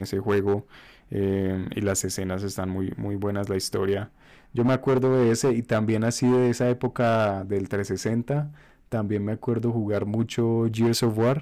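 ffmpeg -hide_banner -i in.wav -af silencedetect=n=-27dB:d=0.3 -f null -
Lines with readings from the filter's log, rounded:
silence_start: 0.60
silence_end: 1.12 | silence_duration: 0.53
silence_start: 4.04
silence_end: 4.55 | silence_duration: 0.51
silence_start: 8.45
silence_end: 8.92 | silence_duration: 0.47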